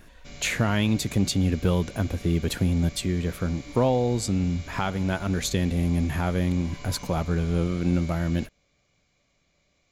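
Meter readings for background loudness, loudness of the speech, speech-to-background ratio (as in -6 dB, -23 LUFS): -43.5 LUFS, -26.0 LUFS, 17.5 dB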